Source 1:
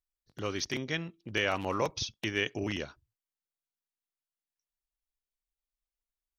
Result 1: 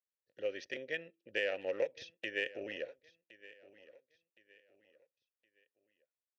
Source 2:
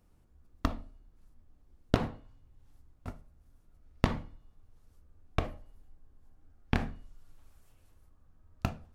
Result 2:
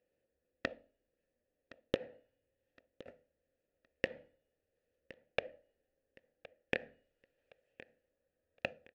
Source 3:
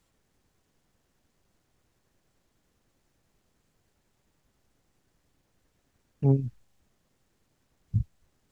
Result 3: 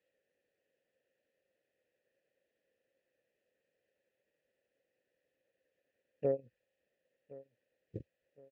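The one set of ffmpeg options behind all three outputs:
-filter_complex "[0:a]aeval=exprs='0.562*(cos(1*acos(clip(val(0)/0.562,-1,1)))-cos(1*PI/2))+0.0631*(cos(5*acos(clip(val(0)/0.562,-1,1)))-cos(5*PI/2))+0.1*(cos(7*acos(clip(val(0)/0.562,-1,1)))-cos(7*PI/2))':c=same,asplit=3[a][b][c];[a]bandpass=f=530:t=q:w=8,volume=0dB[d];[b]bandpass=f=1.84k:t=q:w=8,volume=-6dB[e];[c]bandpass=f=2.48k:t=q:w=8,volume=-9dB[f];[d][e][f]amix=inputs=3:normalize=0,acompressor=threshold=-43dB:ratio=6,aecho=1:1:1066|2132|3198:0.106|0.0371|0.013,volume=13.5dB"

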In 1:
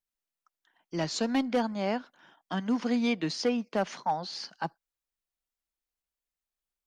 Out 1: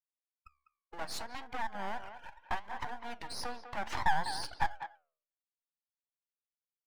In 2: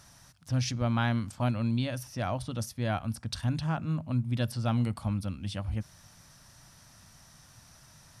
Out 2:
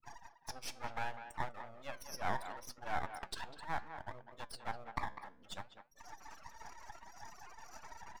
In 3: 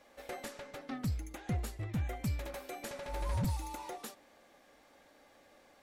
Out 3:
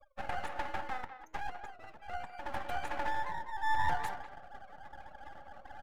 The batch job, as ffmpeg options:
-filter_complex "[0:a]aeval=exprs='0.168*(cos(1*acos(clip(val(0)/0.168,-1,1)))-cos(1*PI/2))+0.00944*(cos(3*acos(clip(val(0)/0.168,-1,1)))-cos(3*PI/2))+0.00944*(cos(4*acos(clip(val(0)/0.168,-1,1)))-cos(4*PI/2))+0.0668*(cos(5*acos(clip(val(0)/0.168,-1,1)))-cos(5*PI/2))+0.00668*(cos(8*acos(clip(val(0)/0.168,-1,1)))-cos(8*PI/2))':c=same,agate=range=-6dB:threshold=-48dB:ratio=16:detection=peak,highshelf=f=3.8k:g=-6,areverse,acompressor=mode=upward:threshold=-42dB:ratio=2.5,areverse,alimiter=level_in=3.5dB:limit=-24dB:level=0:latency=1:release=197,volume=-3.5dB,acompressor=threshold=-35dB:ratio=16,afftfilt=real='re*gte(hypot(re,im),0.00794)':imag='im*gte(hypot(re,im),0.00794)':win_size=1024:overlap=0.75,highpass=f=850:t=q:w=4.9,aeval=exprs='max(val(0),0)':c=same,flanger=delay=6.6:depth=8.8:regen=81:speed=0.68:shape=sinusoidal,asplit=2[a][b];[b]adelay=200,highpass=300,lowpass=3.4k,asoftclip=type=hard:threshold=-30.5dB,volume=-10dB[c];[a][c]amix=inputs=2:normalize=0,volume=7.5dB"

